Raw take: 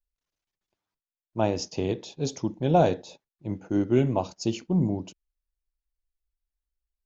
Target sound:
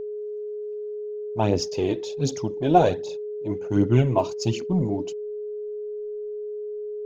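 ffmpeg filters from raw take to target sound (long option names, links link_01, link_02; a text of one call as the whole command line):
ffmpeg -i in.wav -filter_complex "[0:a]asettb=1/sr,asplit=3[link_01][link_02][link_03];[link_01]atrim=end=3.504[link_04];[link_02]atrim=start=3.5:end=4.57,asetpts=PTS-STARTPTS,afade=type=in:duration=0.004:curve=qsin,afade=type=out:start_time=1.066:duration=0.004:curve=qsin,equalizer=frequency=125:width_type=o:width=0.33:gain=7,equalizer=frequency=1000:width_type=o:width=0.33:gain=5,equalizer=frequency=2500:width_type=o:width=0.33:gain=3[link_05];[link_03]atrim=start=4.566[link_06];[link_04][link_05]acrossfade=duration=0.004:curve1=hsin:curve2=qsin[link_07];[link_07][link_06]acrossfade=duration=0.004:curve1=qsin:curve2=hsin,aphaser=in_gain=1:out_gain=1:delay=3.4:decay=0.55:speed=1.3:type=triangular,aeval=exprs='val(0)+0.0282*sin(2*PI*420*n/s)':channel_layout=same,volume=1.5dB" out.wav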